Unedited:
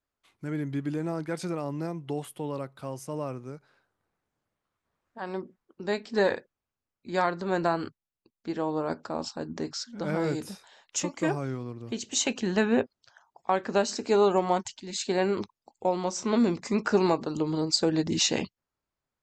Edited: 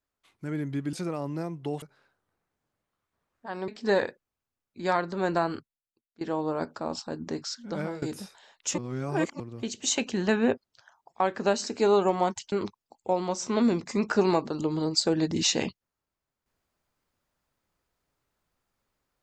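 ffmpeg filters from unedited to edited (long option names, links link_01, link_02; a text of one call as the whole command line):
ffmpeg -i in.wav -filter_complex "[0:a]asplit=9[link_01][link_02][link_03][link_04][link_05][link_06][link_07][link_08][link_09];[link_01]atrim=end=0.932[link_10];[link_02]atrim=start=1.368:end=2.262[link_11];[link_03]atrim=start=3.538:end=5.402[link_12];[link_04]atrim=start=5.968:end=8.5,asetpts=PTS-STARTPTS,afade=type=out:start_time=1.822:duration=0.71:curve=qua:silence=0.133352[link_13];[link_05]atrim=start=8.5:end=10.31,asetpts=PTS-STARTPTS,afade=type=in:duration=0.004:curve=hsin:silence=0.133352,afade=type=out:start_time=1.54:duration=0.27:silence=0.0944061[link_14];[link_06]atrim=start=10.31:end=11.072,asetpts=PTS-STARTPTS,afade=type=in:duration=0.004:curve=hsin:silence=0.0944061[link_15];[link_07]atrim=start=11.068:end=11.692,asetpts=PTS-STARTPTS,areverse[link_16];[link_08]atrim=start=11.688:end=14.812[link_17];[link_09]atrim=start=15.278[link_18];[link_10][link_11]acrossfade=duration=0.004:curve1=hsin:curve2=hsin[link_19];[link_19][link_12]acrossfade=duration=0.004:curve1=hsin:curve2=hsin[link_20];[link_13][link_14][link_15]concat=n=3:v=0:a=1[link_21];[link_20][link_21]acrossfade=duration=0.004:curve1=hsin:curve2=hsin[link_22];[link_22][link_16]acrossfade=duration=0.004:curve1=hsin:curve2=hsin[link_23];[link_23][link_17]acrossfade=duration=0.004:curve1=hsin:curve2=hsin[link_24];[link_24][link_18]acrossfade=duration=0.004:curve1=hsin:curve2=hsin" out.wav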